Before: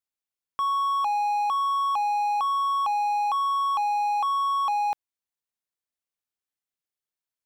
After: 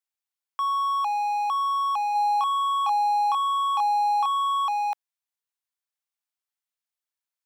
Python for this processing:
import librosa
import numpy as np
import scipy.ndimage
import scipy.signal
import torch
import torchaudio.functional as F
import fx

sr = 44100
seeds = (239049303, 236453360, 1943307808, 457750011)

y = scipy.signal.sosfilt(scipy.signal.butter(4, 680.0, 'highpass', fs=sr, output='sos'), x)
y = fx.doubler(y, sr, ms=30.0, db=-2.5, at=(2.14, 4.66), fade=0.02)